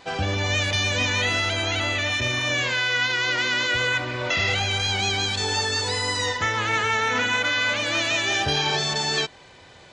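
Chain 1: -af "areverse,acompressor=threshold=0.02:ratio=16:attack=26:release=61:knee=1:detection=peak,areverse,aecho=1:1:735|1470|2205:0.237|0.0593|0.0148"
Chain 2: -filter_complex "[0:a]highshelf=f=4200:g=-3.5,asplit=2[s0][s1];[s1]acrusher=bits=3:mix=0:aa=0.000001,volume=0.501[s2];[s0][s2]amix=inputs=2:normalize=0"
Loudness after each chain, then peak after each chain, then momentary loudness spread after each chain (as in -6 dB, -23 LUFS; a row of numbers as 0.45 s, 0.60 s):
-31.5 LUFS, -19.5 LUFS; -19.0 dBFS, -7.5 dBFS; 2 LU, 3 LU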